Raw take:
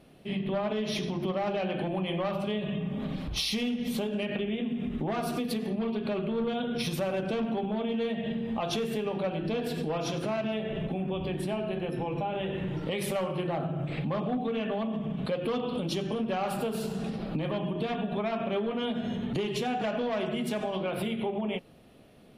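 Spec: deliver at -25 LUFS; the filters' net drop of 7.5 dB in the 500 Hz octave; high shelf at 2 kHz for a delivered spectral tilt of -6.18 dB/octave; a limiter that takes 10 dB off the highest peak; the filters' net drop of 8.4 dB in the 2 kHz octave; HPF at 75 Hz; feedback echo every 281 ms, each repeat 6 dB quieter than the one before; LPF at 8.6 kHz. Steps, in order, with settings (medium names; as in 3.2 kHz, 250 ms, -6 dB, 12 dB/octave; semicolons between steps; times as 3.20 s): high-pass 75 Hz; low-pass 8.6 kHz; peaking EQ 500 Hz -9 dB; treble shelf 2 kHz -3.5 dB; peaking EQ 2 kHz -8.5 dB; peak limiter -32.5 dBFS; feedback delay 281 ms, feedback 50%, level -6 dB; trim +13.5 dB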